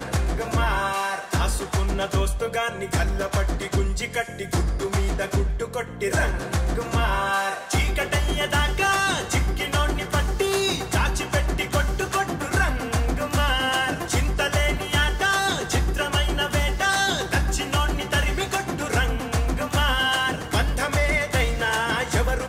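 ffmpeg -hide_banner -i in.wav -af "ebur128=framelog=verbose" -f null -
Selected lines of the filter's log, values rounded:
Integrated loudness:
  I:         -23.6 LUFS
  Threshold: -33.5 LUFS
Loudness range:
  LRA:         3.0 LU
  Threshold: -43.6 LUFS
  LRA low:   -25.4 LUFS
  LRA high:  -22.5 LUFS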